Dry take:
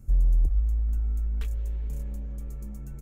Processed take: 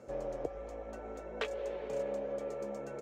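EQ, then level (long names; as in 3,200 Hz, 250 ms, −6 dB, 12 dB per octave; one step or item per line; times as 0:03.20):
high-pass with resonance 530 Hz, resonance Q 3.7
high-frequency loss of the air 150 metres
+11.5 dB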